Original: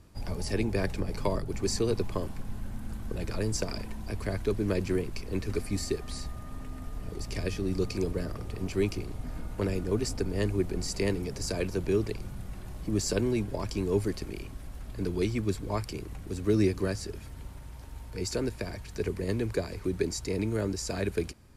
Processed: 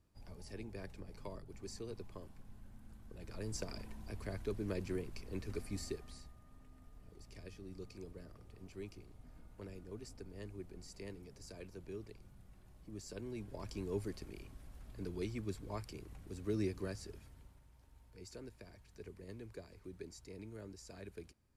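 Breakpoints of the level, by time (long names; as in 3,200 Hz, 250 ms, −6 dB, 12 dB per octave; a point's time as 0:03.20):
0:03.11 −18.5 dB
0:03.56 −11 dB
0:05.88 −11 dB
0:06.37 −20 dB
0:13.09 −20 dB
0:13.68 −12 dB
0:17.13 −12 dB
0:17.66 −20 dB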